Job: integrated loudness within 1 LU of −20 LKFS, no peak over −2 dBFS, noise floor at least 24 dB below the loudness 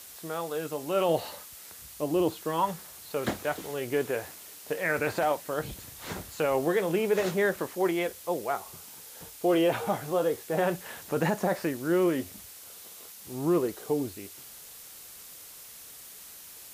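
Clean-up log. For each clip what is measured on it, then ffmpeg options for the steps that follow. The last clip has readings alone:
background noise floor −47 dBFS; target noise floor −54 dBFS; integrated loudness −29.5 LKFS; sample peak −15.5 dBFS; target loudness −20.0 LKFS
→ -af "afftdn=noise_reduction=7:noise_floor=-47"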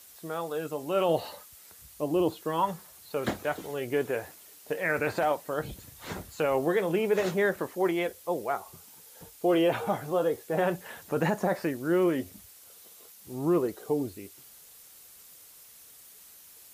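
background noise floor −53 dBFS; target noise floor −54 dBFS
→ -af "afftdn=noise_reduction=6:noise_floor=-53"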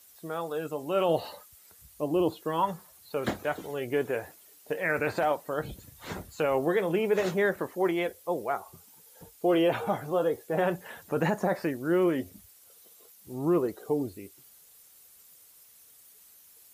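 background noise floor −57 dBFS; integrated loudness −29.5 LKFS; sample peak −15.5 dBFS; target loudness −20.0 LKFS
→ -af "volume=9.5dB"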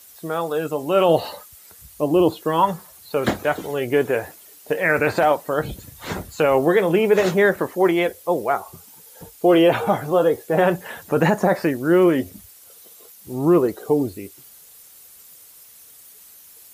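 integrated loudness −20.0 LKFS; sample peak −6.0 dBFS; background noise floor −47 dBFS

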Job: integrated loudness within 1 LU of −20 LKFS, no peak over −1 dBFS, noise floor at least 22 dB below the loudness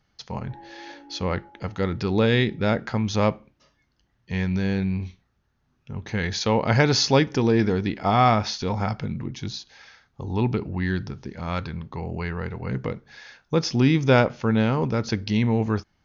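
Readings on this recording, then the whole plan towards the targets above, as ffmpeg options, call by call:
integrated loudness −24.0 LKFS; sample peak −5.5 dBFS; target loudness −20.0 LKFS
→ -af "volume=4dB"

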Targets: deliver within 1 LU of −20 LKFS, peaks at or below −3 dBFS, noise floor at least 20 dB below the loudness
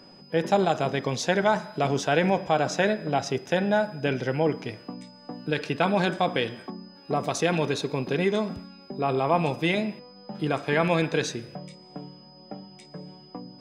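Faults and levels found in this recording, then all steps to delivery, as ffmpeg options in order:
interfering tone 5,000 Hz; level of the tone −52 dBFS; integrated loudness −26.0 LKFS; sample peak −9.5 dBFS; target loudness −20.0 LKFS
→ -af "bandreject=frequency=5000:width=30"
-af "volume=6dB"

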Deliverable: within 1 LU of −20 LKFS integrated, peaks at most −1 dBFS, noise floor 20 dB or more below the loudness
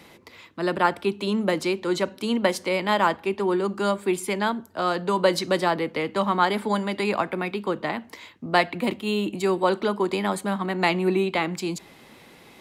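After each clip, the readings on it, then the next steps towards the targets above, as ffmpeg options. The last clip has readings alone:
integrated loudness −24.5 LKFS; sample peak −6.0 dBFS; target loudness −20.0 LKFS
→ -af "volume=4.5dB"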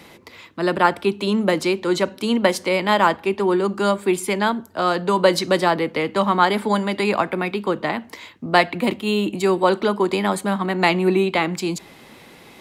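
integrated loudness −20.0 LKFS; sample peak −1.5 dBFS; background noise floor −46 dBFS

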